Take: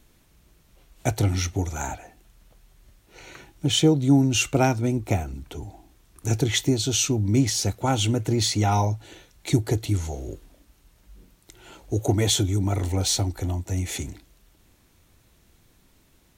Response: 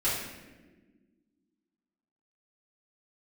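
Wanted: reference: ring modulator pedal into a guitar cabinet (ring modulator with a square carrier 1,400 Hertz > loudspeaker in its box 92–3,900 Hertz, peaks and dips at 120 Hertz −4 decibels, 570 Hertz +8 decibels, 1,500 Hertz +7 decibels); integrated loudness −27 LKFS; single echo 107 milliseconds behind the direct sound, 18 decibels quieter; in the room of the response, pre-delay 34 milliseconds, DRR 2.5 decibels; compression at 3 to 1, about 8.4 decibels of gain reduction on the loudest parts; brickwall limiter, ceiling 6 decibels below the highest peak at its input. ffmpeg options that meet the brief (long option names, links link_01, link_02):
-filter_complex "[0:a]acompressor=threshold=-24dB:ratio=3,alimiter=limit=-18.5dB:level=0:latency=1,aecho=1:1:107:0.126,asplit=2[link_01][link_02];[1:a]atrim=start_sample=2205,adelay=34[link_03];[link_02][link_03]afir=irnorm=-1:irlink=0,volume=-12.5dB[link_04];[link_01][link_04]amix=inputs=2:normalize=0,aeval=exprs='val(0)*sgn(sin(2*PI*1400*n/s))':channel_layout=same,highpass=92,equalizer=frequency=120:width_type=q:width=4:gain=-4,equalizer=frequency=570:width_type=q:width=4:gain=8,equalizer=frequency=1500:width_type=q:width=4:gain=7,lowpass=frequency=3900:width=0.5412,lowpass=frequency=3900:width=1.3066,volume=-5.5dB"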